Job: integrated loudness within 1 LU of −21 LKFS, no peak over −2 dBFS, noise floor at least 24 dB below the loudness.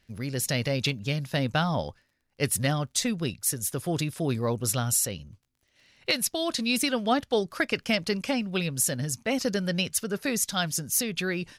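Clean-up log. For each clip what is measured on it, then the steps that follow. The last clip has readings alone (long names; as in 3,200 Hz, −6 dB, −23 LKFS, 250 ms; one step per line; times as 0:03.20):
crackle rate 26 per second; integrated loudness −27.5 LKFS; sample peak −13.0 dBFS; target loudness −21.0 LKFS
→ click removal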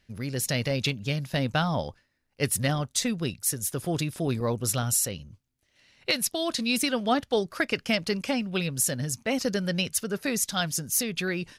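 crackle rate 0 per second; integrated loudness −27.5 LKFS; sample peak −13.0 dBFS; target loudness −21.0 LKFS
→ level +6.5 dB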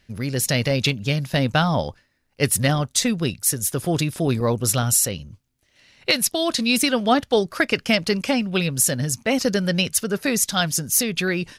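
integrated loudness −21.0 LKFS; sample peak −6.5 dBFS; background noise floor −67 dBFS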